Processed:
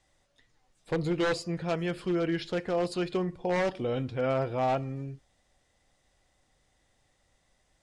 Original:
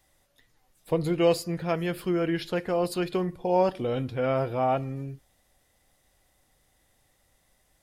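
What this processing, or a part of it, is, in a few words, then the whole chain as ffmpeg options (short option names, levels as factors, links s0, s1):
synthesiser wavefolder: -af "lowpass=11000,aeval=exprs='0.112*(abs(mod(val(0)/0.112+3,4)-2)-1)':c=same,lowpass=f=8700:w=0.5412,lowpass=f=8700:w=1.3066,volume=0.794"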